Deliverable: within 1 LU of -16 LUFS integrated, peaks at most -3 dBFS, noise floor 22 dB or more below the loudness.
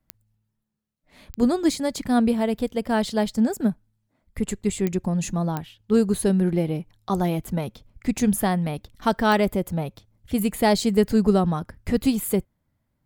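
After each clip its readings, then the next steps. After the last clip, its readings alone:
clicks 5; loudness -23.5 LUFS; peak -6.0 dBFS; loudness target -16.0 LUFS
-> de-click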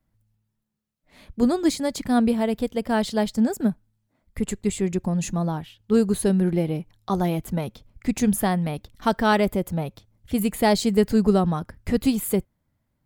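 clicks 0; loudness -23.5 LUFS; peak -6.0 dBFS; loudness target -16.0 LUFS
-> gain +7.5 dB; limiter -3 dBFS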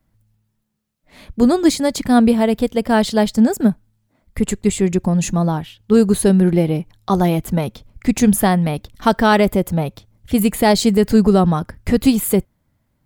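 loudness -16.5 LUFS; peak -3.0 dBFS; noise floor -67 dBFS

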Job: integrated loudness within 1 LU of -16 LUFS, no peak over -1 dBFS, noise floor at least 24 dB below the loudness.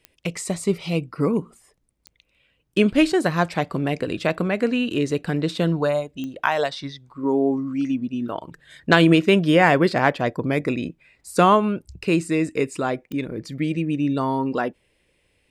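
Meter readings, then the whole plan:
clicks 4; loudness -22.0 LUFS; peak -3.0 dBFS; loudness target -16.0 LUFS
-> de-click; gain +6 dB; limiter -1 dBFS

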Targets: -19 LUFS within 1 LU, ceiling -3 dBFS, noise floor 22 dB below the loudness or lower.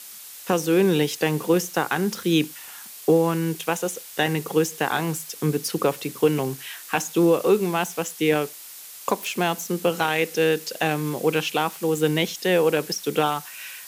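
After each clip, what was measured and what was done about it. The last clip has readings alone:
noise floor -41 dBFS; noise floor target -46 dBFS; loudness -23.5 LUFS; peak -7.5 dBFS; loudness target -19.0 LUFS
-> noise print and reduce 6 dB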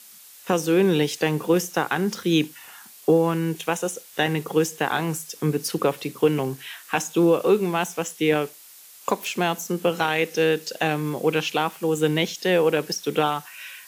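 noise floor -47 dBFS; loudness -23.5 LUFS; peak -8.0 dBFS; loudness target -19.0 LUFS
-> gain +4.5 dB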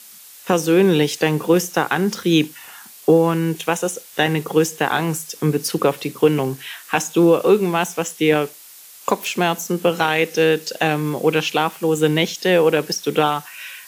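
loudness -19.0 LUFS; peak -3.5 dBFS; noise floor -43 dBFS

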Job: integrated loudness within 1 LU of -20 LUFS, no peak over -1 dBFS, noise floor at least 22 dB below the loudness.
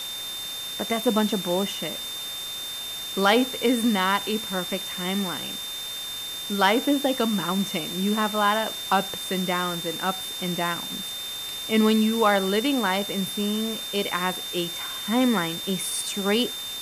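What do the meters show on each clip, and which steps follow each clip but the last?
steady tone 3600 Hz; tone level -32 dBFS; noise floor -34 dBFS; noise floor target -47 dBFS; loudness -25.0 LUFS; peak -7.5 dBFS; loudness target -20.0 LUFS
-> notch 3600 Hz, Q 30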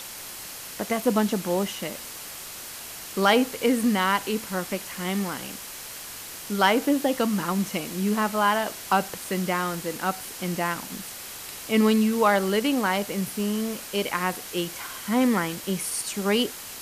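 steady tone none; noise floor -39 dBFS; noise floor target -48 dBFS
-> noise print and reduce 9 dB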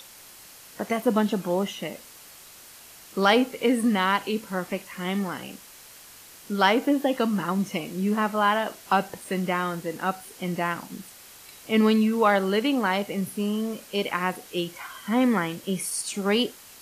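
noise floor -48 dBFS; loudness -25.5 LUFS; peak -8.5 dBFS; loudness target -20.0 LUFS
-> gain +5.5 dB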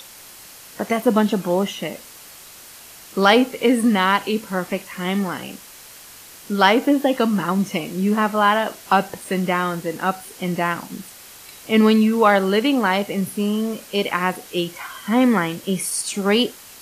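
loudness -20.0 LUFS; peak -3.0 dBFS; noise floor -42 dBFS

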